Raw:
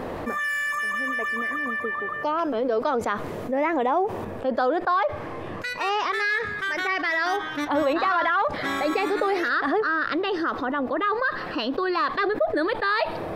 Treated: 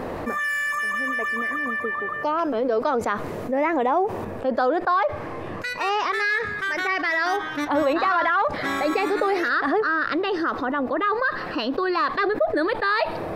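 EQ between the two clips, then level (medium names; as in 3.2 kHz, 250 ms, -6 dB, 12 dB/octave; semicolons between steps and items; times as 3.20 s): peaking EQ 3.3 kHz -3.5 dB 0.29 oct; +1.5 dB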